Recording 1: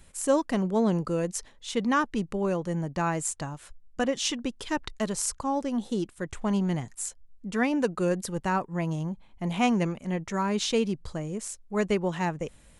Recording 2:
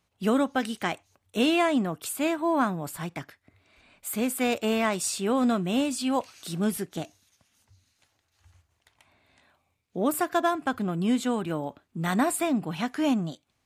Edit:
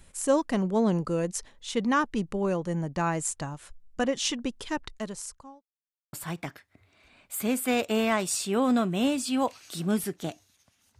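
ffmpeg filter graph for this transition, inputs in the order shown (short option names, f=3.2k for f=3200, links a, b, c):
-filter_complex "[0:a]apad=whole_dur=10.99,atrim=end=10.99,asplit=2[a][b];[a]atrim=end=5.62,asetpts=PTS-STARTPTS,afade=t=out:st=4.51:d=1.11[c];[b]atrim=start=5.62:end=6.13,asetpts=PTS-STARTPTS,volume=0[d];[1:a]atrim=start=2.86:end=7.72,asetpts=PTS-STARTPTS,afade=t=in:d=0.004:c=hsin[e];[c][d][e]concat=n=3:v=0:a=1"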